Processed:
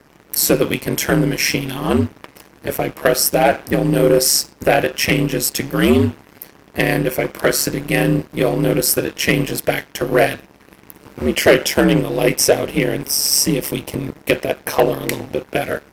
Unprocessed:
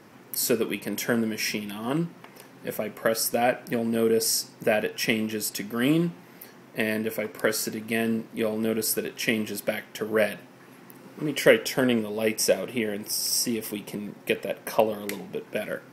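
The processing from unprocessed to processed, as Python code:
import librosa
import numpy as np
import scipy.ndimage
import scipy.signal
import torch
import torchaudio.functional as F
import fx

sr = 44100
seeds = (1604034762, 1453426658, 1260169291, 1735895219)

y = x * np.sin(2.0 * np.pi * 71.0 * np.arange(len(x)) / sr)
y = fx.leveller(y, sr, passes=2)
y = F.gain(torch.from_numpy(y), 6.0).numpy()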